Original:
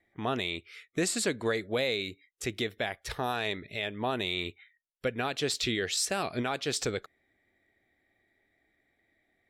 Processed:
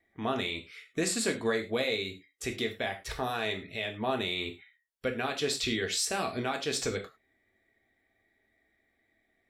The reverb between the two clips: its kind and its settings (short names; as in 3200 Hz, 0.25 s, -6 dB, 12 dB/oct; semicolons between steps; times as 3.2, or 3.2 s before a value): non-linear reverb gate 0.13 s falling, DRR 3 dB; gain -2 dB